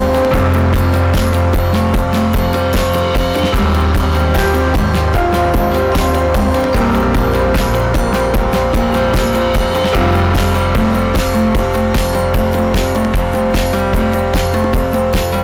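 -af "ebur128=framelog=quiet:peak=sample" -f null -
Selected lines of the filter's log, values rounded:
Integrated loudness:
  I:         -14.0 LUFS
  Threshold: -24.0 LUFS
Loudness range:
  LRA:         1.0 LU
  Threshold: -34.0 LUFS
  LRA low:   -14.6 LUFS
  LRA high:  -13.6 LUFS
Sample peak:
  Peak:       -8.4 dBFS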